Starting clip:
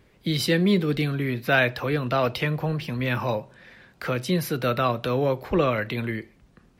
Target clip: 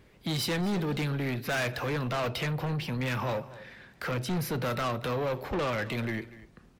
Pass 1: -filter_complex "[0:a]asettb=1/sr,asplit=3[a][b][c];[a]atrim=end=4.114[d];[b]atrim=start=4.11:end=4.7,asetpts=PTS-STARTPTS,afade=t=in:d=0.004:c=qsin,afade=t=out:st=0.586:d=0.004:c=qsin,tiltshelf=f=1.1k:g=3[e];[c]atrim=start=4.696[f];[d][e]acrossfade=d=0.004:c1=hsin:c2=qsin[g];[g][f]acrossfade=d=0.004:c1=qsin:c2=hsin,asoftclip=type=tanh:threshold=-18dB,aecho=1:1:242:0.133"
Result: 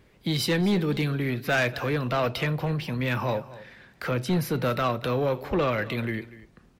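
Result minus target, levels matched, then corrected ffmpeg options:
soft clip: distortion -7 dB
-filter_complex "[0:a]asettb=1/sr,asplit=3[a][b][c];[a]atrim=end=4.114[d];[b]atrim=start=4.11:end=4.7,asetpts=PTS-STARTPTS,afade=t=in:d=0.004:c=qsin,afade=t=out:st=0.586:d=0.004:c=qsin,tiltshelf=f=1.1k:g=3[e];[c]atrim=start=4.696[f];[d][e]acrossfade=d=0.004:c1=hsin:c2=qsin[g];[g][f]acrossfade=d=0.004:c1=qsin:c2=hsin,asoftclip=type=tanh:threshold=-27dB,aecho=1:1:242:0.133"

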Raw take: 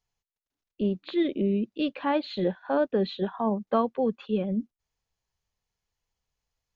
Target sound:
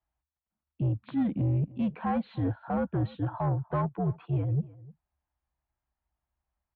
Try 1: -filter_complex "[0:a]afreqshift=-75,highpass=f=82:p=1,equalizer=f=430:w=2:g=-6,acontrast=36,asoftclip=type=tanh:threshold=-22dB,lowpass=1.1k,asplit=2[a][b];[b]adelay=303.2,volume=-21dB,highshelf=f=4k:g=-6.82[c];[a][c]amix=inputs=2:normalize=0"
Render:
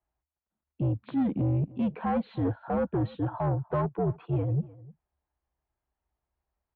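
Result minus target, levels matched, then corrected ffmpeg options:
500 Hz band +3.5 dB
-filter_complex "[0:a]afreqshift=-75,highpass=f=82:p=1,equalizer=f=430:w=2:g=-15.5,acontrast=36,asoftclip=type=tanh:threshold=-22dB,lowpass=1.1k,asplit=2[a][b];[b]adelay=303.2,volume=-21dB,highshelf=f=4k:g=-6.82[c];[a][c]amix=inputs=2:normalize=0"

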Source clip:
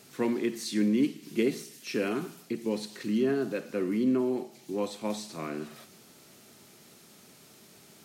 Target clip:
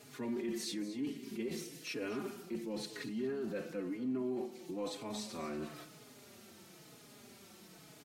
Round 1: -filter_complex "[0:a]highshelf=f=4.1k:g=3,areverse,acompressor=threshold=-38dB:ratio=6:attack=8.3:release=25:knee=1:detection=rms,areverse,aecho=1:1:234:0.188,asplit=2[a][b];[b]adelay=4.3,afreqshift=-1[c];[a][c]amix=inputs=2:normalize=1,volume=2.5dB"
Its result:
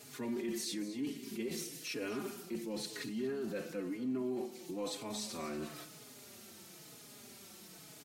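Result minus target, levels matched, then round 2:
8000 Hz band +4.0 dB
-filter_complex "[0:a]highshelf=f=4.1k:g=-4.5,areverse,acompressor=threshold=-38dB:ratio=6:attack=8.3:release=25:knee=1:detection=rms,areverse,aecho=1:1:234:0.188,asplit=2[a][b];[b]adelay=4.3,afreqshift=-1[c];[a][c]amix=inputs=2:normalize=1,volume=2.5dB"

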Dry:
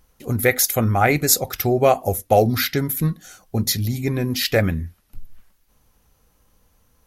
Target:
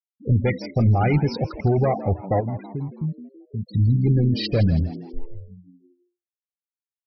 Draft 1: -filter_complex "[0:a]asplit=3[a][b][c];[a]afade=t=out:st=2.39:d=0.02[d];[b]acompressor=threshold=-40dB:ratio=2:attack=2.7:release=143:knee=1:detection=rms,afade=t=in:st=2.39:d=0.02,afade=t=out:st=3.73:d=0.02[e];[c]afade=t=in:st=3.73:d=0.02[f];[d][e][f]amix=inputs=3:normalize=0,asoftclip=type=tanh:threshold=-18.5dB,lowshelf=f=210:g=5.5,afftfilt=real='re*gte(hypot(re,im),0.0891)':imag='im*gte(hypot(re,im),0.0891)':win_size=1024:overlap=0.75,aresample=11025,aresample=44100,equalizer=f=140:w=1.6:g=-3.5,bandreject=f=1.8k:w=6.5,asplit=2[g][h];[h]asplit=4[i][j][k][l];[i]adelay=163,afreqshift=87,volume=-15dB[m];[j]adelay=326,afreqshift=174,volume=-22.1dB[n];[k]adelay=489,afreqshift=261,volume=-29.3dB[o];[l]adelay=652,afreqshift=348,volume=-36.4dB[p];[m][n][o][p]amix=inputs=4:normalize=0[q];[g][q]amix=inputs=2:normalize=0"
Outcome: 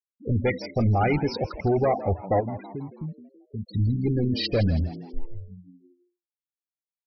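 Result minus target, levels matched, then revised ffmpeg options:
125 Hz band -2.5 dB
-filter_complex "[0:a]asplit=3[a][b][c];[a]afade=t=out:st=2.39:d=0.02[d];[b]acompressor=threshold=-40dB:ratio=2:attack=2.7:release=143:knee=1:detection=rms,afade=t=in:st=2.39:d=0.02,afade=t=out:st=3.73:d=0.02[e];[c]afade=t=in:st=3.73:d=0.02[f];[d][e][f]amix=inputs=3:normalize=0,asoftclip=type=tanh:threshold=-18.5dB,lowshelf=f=210:g=5.5,afftfilt=real='re*gte(hypot(re,im),0.0891)':imag='im*gte(hypot(re,im),0.0891)':win_size=1024:overlap=0.75,aresample=11025,aresample=44100,equalizer=f=140:w=1.6:g=5.5,bandreject=f=1.8k:w=6.5,asplit=2[g][h];[h]asplit=4[i][j][k][l];[i]adelay=163,afreqshift=87,volume=-15dB[m];[j]adelay=326,afreqshift=174,volume=-22.1dB[n];[k]adelay=489,afreqshift=261,volume=-29.3dB[o];[l]adelay=652,afreqshift=348,volume=-36.4dB[p];[m][n][o][p]amix=inputs=4:normalize=0[q];[g][q]amix=inputs=2:normalize=0"

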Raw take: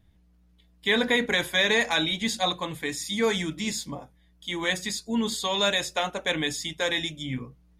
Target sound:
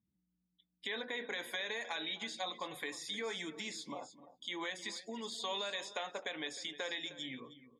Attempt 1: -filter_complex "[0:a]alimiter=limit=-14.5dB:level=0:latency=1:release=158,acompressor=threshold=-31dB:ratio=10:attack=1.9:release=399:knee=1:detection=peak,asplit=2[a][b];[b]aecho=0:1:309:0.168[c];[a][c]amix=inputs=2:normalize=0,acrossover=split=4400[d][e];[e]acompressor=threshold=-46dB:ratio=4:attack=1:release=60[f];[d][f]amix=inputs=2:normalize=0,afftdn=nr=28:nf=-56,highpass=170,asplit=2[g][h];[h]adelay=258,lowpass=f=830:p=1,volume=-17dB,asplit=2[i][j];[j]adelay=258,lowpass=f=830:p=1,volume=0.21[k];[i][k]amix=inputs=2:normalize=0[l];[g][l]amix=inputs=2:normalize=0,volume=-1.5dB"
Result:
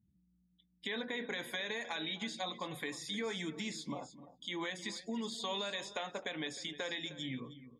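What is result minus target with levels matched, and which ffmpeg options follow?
125 Hz band +9.5 dB
-filter_complex "[0:a]alimiter=limit=-14.5dB:level=0:latency=1:release=158,acompressor=threshold=-31dB:ratio=10:attack=1.9:release=399:knee=1:detection=peak,asplit=2[a][b];[b]aecho=0:1:309:0.168[c];[a][c]amix=inputs=2:normalize=0,acrossover=split=4400[d][e];[e]acompressor=threshold=-46dB:ratio=4:attack=1:release=60[f];[d][f]amix=inputs=2:normalize=0,afftdn=nr=28:nf=-56,highpass=360,asplit=2[g][h];[h]adelay=258,lowpass=f=830:p=1,volume=-17dB,asplit=2[i][j];[j]adelay=258,lowpass=f=830:p=1,volume=0.21[k];[i][k]amix=inputs=2:normalize=0[l];[g][l]amix=inputs=2:normalize=0,volume=-1.5dB"

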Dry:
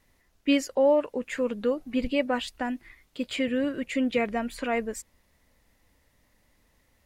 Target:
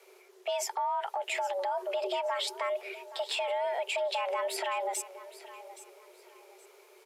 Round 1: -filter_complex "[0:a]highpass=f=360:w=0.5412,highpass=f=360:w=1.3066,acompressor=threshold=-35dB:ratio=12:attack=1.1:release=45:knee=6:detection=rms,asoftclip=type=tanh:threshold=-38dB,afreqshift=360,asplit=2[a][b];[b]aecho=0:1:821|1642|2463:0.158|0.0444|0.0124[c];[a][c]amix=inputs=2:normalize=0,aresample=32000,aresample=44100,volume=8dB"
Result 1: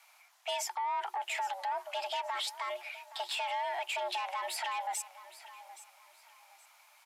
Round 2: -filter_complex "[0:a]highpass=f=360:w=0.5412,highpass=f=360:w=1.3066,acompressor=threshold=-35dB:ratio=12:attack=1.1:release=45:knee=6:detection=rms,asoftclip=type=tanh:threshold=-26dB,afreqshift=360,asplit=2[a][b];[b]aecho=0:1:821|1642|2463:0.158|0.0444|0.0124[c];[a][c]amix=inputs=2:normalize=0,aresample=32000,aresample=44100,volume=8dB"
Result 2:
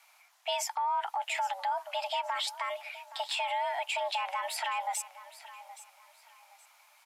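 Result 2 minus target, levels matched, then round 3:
500 Hz band -7.0 dB
-filter_complex "[0:a]acompressor=threshold=-35dB:ratio=12:attack=1.1:release=45:knee=6:detection=rms,asoftclip=type=tanh:threshold=-26dB,afreqshift=360,asplit=2[a][b];[b]aecho=0:1:821|1642|2463:0.158|0.0444|0.0124[c];[a][c]amix=inputs=2:normalize=0,aresample=32000,aresample=44100,volume=8dB"

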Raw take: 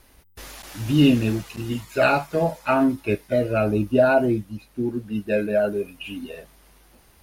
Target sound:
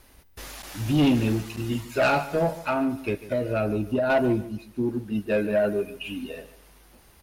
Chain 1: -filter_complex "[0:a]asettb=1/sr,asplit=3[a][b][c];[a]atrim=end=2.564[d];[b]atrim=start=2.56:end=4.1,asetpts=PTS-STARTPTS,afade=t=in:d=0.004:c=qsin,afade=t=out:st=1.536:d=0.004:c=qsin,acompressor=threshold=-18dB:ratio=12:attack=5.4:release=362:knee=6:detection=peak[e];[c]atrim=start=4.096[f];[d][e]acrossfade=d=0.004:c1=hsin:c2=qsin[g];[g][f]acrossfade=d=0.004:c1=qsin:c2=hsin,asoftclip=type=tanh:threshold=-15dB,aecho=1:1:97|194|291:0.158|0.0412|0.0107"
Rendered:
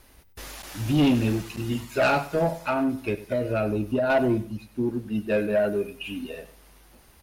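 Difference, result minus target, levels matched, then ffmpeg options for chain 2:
echo 47 ms early
-filter_complex "[0:a]asettb=1/sr,asplit=3[a][b][c];[a]atrim=end=2.564[d];[b]atrim=start=2.56:end=4.1,asetpts=PTS-STARTPTS,afade=t=in:d=0.004:c=qsin,afade=t=out:st=1.536:d=0.004:c=qsin,acompressor=threshold=-18dB:ratio=12:attack=5.4:release=362:knee=6:detection=peak[e];[c]atrim=start=4.096[f];[d][e]acrossfade=d=0.004:c1=hsin:c2=qsin[g];[g][f]acrossfade=d=0.004:c1=qsin:c2=hsin,asoftclip=type=tanh:threshold=-15dB,aecho=1:1:144|288|432:0.158|0.0412|0.0107"

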